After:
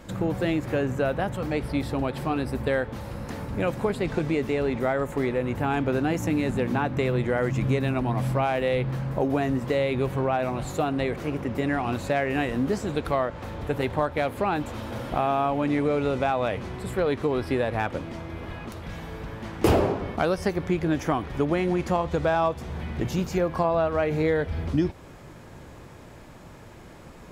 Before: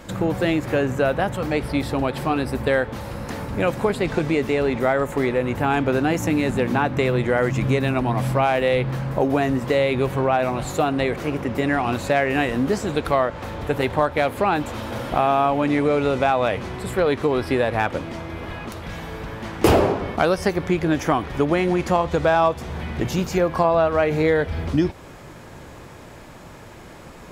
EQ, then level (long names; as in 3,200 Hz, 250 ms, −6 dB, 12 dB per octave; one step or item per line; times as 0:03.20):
low-shelf EQ 370 Hz +4 dB
−6.5 dB